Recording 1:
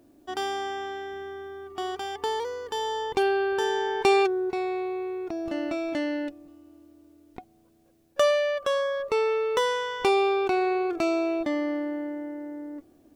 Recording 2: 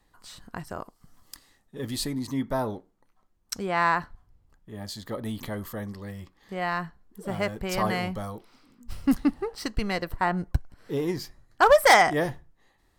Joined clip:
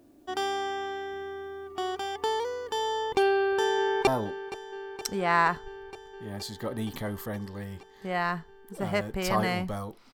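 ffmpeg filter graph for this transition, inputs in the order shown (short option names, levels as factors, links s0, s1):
-filter_complex "[0:a]apad=whole_dur=10.13,atrim=end=10.13,atrim=end=4.072[s0];[1:a]atrim=start=2.538:end=8.6[s1];[s0][s1]acrossfade=d=0.004:c1=hsin:c2=hsin,asplit=2[s2][s3];[s3]afade=t=in:st=3.31:d=0.01,afade=t=out:st=4.07:d=0.01,aecho=0:1:470|940|1410|1880|2350|2820|3290|3760|4230|4700|5170|5640:0.188365|0.150692|0.120554|0.0964428|0.0771543|0.0617234|0.0493787|0.039503|0.0316024|0.0252819|0.0202255|0.0161804[s4];[s2][s4]amix=inputs=2:normalize=0"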